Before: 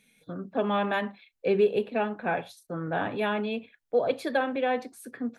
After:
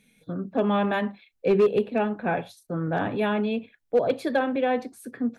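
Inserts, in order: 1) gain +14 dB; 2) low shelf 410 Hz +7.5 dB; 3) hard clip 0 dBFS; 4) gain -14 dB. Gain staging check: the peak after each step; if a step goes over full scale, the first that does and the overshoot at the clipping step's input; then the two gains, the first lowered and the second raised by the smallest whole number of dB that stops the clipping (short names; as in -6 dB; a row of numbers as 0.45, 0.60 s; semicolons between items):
+1.0, +4.5, 0.0, -14.0 dBFS; step 1, 4.5 dB; step 1 +9 dB, step 4 -9 dB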